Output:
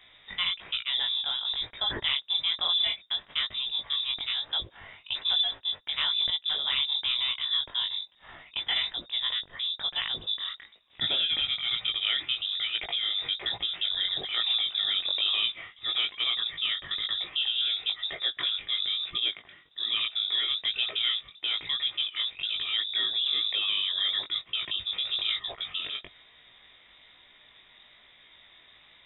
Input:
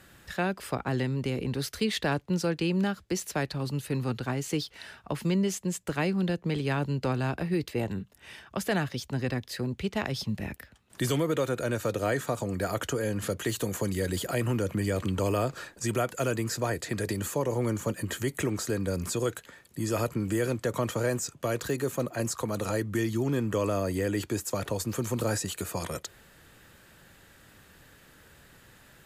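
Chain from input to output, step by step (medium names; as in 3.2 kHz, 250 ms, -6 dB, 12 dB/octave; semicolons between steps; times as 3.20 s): frequency inversion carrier 3.7 kHz; chorus 1.1 Hz, delay 17 ms, depth 4.7 ms; trim +2.5 dB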